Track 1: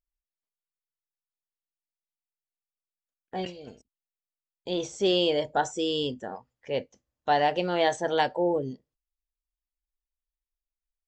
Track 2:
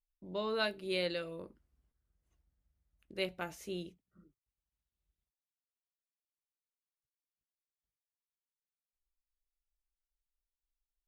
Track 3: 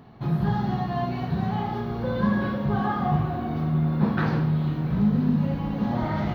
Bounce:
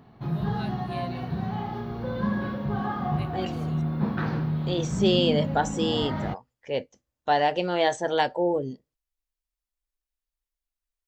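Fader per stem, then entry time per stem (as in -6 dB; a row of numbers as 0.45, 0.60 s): +1.0, -8.0, -4.0 dB; 0.00, 0.00, 0.00 s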